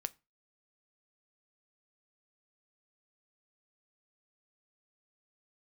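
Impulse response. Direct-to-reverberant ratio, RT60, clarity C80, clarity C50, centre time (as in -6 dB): 12.5 dB, 0.25 s, 31.5 dB, 25.5 dB, 2 ms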